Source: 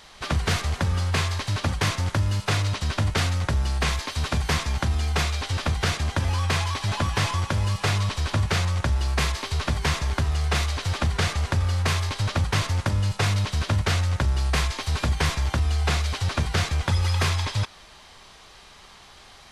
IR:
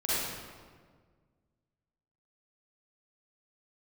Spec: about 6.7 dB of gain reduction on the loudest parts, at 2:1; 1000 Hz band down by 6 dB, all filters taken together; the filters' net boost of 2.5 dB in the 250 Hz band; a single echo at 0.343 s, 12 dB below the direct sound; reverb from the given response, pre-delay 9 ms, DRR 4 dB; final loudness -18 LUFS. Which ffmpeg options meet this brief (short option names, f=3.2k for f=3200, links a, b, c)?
-filter_complex "[0:a]equalizer=f=250:t=o:g=4,equalizer=f=1k:t=o:g=-8,acompressor=threshold=-31dB:ratio=2,aecho=1:1:343:0.251,asplit=2[a][b];[1:a]atrim=start_sample=2205,adelay=9[c];[b][c]afir=irnorm=-1:irlink=0,volume=-13.5dB[d];[a][d]amix=inputs=2:normalize=0,volume=11dB"